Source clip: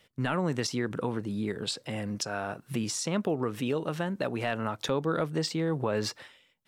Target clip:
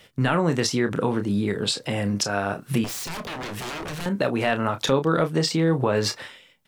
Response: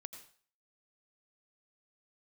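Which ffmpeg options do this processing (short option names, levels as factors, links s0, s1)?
-filter_complex "[0:a]asplit=2[s0][s1];[s1]acompressor=threshold=0.01:ratio=6,volume=0.75[s2];[s0][s2]amix=inputs=2:normalize=0,asettb=1/sr,asplit=3[s3][s4][s5];[s3]atrim=end=2.844[s6];[s4]atrim=start=2.84:end=4.06,asetpts=PTS-STARTPTS,afade=t=in:d=0.004:c=qsin,afade=t=out:st=1.216:d=0.004:c=qsin,aeval=exprs='0.02*(abs(mod(val(0)/0.02+3,4)-2)-1)':c=same[s7];[s5]atrim=start=4.056[s8];[s6][s7]acrossfade=d=0.004:c1=hsin:c2=qsin[s9];[s9][s8]acrossfade=d=0.004:c1=qsin:c2=hsin,asplit=2[s10][s11];[s11]adelay=30,volume=0.355[s12];[s10][s12]amix=inputs=2:normalize=0,volume=2"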